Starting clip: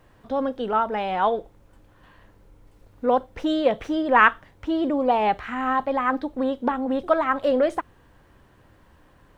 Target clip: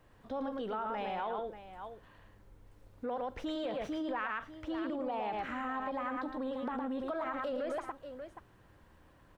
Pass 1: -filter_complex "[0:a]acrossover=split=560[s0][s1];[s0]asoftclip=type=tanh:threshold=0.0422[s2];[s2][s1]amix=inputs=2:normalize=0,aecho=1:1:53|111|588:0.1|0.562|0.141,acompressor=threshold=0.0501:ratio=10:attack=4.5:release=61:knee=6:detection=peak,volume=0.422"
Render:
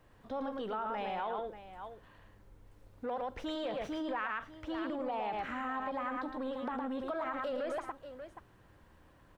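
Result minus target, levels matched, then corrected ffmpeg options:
saturation: distortion +8 dB
-filter_complex "[0:a]acrossover=split=560[s0][s1];[s0]asoftclip=type=tanh:threshold=0.0944[s2];[s2][s1]amix=inputs=2:normalize=0,aecho=1:1:53|111|588:0.1|0.562|0.141,acompressor=threshold=0.0501:ratio=10:attack=4.5:release=61:knee=6:detection=peak,volume=0.422"

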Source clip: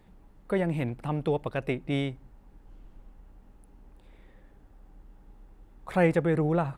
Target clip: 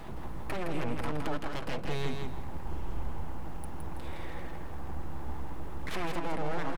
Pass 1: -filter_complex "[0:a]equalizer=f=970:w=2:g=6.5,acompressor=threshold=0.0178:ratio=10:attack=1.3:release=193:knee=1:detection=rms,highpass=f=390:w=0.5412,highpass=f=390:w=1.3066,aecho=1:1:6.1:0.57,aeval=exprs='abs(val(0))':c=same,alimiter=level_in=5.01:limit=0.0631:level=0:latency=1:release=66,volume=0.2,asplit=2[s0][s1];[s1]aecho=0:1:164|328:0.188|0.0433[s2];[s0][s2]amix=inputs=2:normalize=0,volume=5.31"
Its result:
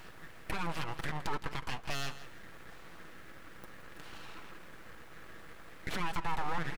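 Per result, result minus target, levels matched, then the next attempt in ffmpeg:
500 Hz band -7.5 dB; echo-to-direct -9.5 dB
-filter_complex "[0:a]equalizer=f=970:w=2:g=6.5,acompressor=threshold=0.0178:ratio=10:attack=1.3:release=193:knee=1:detection=rms,aecho=1:1:6.1:0.57,aeval=exprs='abs(val(0))':c=same,alimiter=level_in=5.01:limit=0.0631:level=0:latency=1:release=66,volume=0.2,asplit=2[s0][s1];[s1]aecho=0:1:164|328:0.188|0.0433[s2];[s0][s2]amix=inputs=2:normalize=0,volume=5.31"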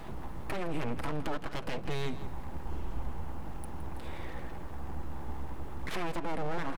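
echo-to-direct -9.5 dB
-filter_complex "[0:a]equalizer=f=970:w=2:g=6.5,acompressor=threshold=0.0178:ratio=10:attack=1.3:release=193:knee=1:detection=rms,aecho=1:1:6.1:0.57,aeval=exprs='abs(val(0))':c=same,alimiter=level_in=5.01:limit=0.0631:level=0:latency=1:release=66,volume=0.2,asplit=2[s0][s1];[s1]aecho=0:1:164|328|492:0.562|0.129|0.0297[s2];[s0][s2]amix=inputs=2:normalize=0,volume=5.31"

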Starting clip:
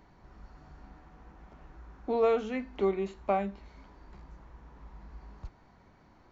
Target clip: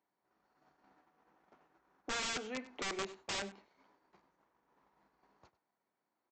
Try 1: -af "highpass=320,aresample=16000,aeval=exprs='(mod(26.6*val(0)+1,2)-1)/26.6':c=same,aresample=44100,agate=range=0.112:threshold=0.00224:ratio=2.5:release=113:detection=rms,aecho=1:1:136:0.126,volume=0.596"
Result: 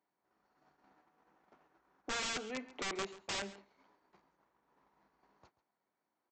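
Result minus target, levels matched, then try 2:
echo 39 ms late
-af "highpass=320,aresample=16000,aeval=exprs='(mod(26.6*val(0)+1,2)-1)/26.6':c=same,aresample=44100,agate=range=0.112:threshold=0.00224:ratio=2.5:release=113:detection=rms,aecho=1:1:97:0.126,volume=0.596"

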